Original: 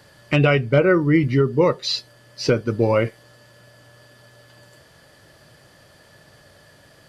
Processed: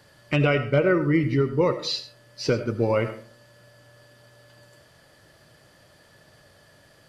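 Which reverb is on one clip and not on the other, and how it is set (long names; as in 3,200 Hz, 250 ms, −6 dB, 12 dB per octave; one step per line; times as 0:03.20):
comb and all-pass reverb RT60 0.48 s, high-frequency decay 0.5×, pre-delay 40 ms, DRR 10.5 dB
level −4.5 dB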